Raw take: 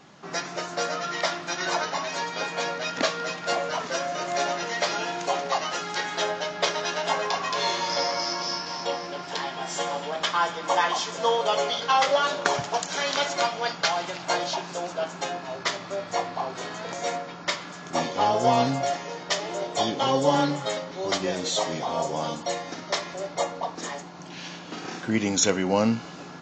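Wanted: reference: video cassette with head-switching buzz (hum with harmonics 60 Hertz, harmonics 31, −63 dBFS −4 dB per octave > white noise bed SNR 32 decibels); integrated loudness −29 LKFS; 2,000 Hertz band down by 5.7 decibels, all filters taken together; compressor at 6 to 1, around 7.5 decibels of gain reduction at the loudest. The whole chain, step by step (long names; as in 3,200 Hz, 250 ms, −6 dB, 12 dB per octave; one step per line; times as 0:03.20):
parametric band 2,000 Hz −7.5 dB
downward compressor 6 to 1, threshold −25 dBFS
hum with harmonics 60 Hz, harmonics 31, −63 dBFS −4 dB per octave
white noise bed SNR 32 dB
level +2 dB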